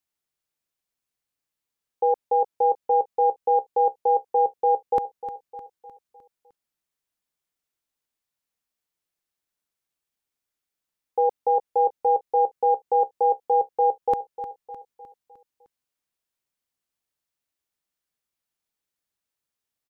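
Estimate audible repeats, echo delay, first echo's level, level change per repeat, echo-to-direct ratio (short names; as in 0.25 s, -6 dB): 4, 0.305 s, -12.5 dB, -6.0 dB, -11.5 dB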